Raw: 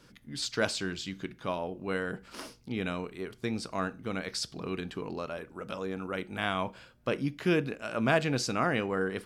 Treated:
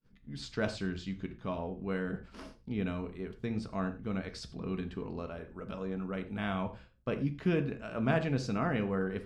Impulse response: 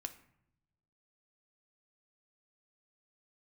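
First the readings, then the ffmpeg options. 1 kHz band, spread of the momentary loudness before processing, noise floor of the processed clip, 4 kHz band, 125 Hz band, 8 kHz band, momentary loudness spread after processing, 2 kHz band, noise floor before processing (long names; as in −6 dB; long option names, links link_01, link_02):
−5.5 dB, 10 LU, −59 dBFS, −10.0 dB, +1.5 dB, −14.0 dB, 11 LU, −6.5 dB, −59 dBFS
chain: -filter_complex "[0:a]aemphasis=mode=reproduction:type=bsi,aeval=exprs='val(0)+0.00126*(sin(2*PI*50*n/s)+sin(2*PI*2*50*n/s)/2+sin(2*PI*3*50*n/s)/3+sin(2*PI*4*50*n/s)/4+sin(2*PI*5*50*n/s)/5)':channel_layout=same,agate=range=-33dB:threshold=-43dB:ratio=3:detection=peak[link_01];[1:a]atrim=start_sample=2205,atrim=end_sample=3528,asetrate=30429,aresample=44100[link_02];[link_01][link_02]afir=irnorm=-1:irlink=0,volume=-4.5dB"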